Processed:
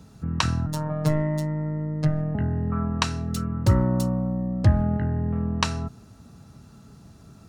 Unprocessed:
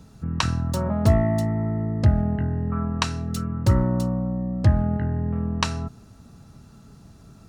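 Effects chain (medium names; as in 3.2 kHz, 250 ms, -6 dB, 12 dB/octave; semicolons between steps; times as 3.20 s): high-pass 52 Hz; 0.66–2.35 s: robot voice 153 Hz; 3.99–4.47 s: treble shelf 5.2 kHz -> 9 kHz +8 dB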